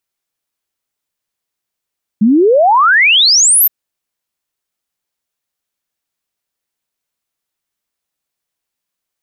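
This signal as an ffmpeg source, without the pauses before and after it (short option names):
-f lavfi -i "aevalsrc='0.531*clip(min(t,1.47-t)/0.01,0,1)*sin(2*PI*200*1.47/log(14000/200)*(exp(log(14000/200)*t/1.47)-1))':d=1.47:s=44100"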